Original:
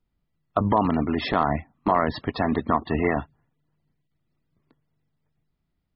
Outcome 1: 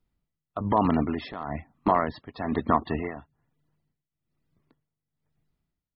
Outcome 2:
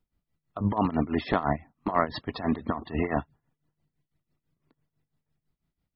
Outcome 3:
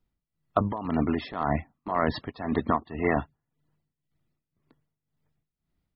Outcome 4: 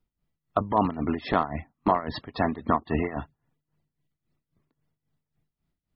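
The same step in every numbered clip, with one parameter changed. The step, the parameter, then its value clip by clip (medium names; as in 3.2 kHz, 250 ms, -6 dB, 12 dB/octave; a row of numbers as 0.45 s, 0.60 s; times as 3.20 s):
tremolo, rate: 1.1 Hz, 6 Hz, 1.9 Hz, 3.7 Hz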